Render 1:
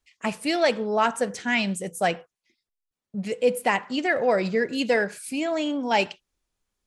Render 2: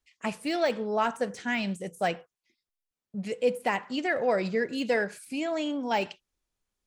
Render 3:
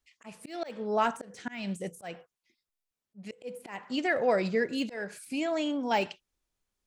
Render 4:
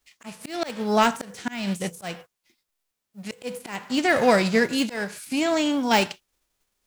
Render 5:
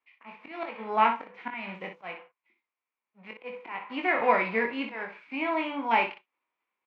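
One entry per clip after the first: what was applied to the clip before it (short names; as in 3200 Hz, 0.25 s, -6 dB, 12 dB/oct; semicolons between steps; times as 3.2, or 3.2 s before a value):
de-esser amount 80%; gain -4 dB
auto swell 0.282 s
spectral whitening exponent 0.6; gain +7.5 dB
speaker cabinet 350–2500 Hz, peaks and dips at 420 Hz -3 dB, 610 Hz -4 dB, 1000 Hz +8 dB, 1600 Hz -4 dB, 2300 Hz +8 dB; early reflections 22 ms -5.5 dB, 60 ms -8 dB; gain -6 dB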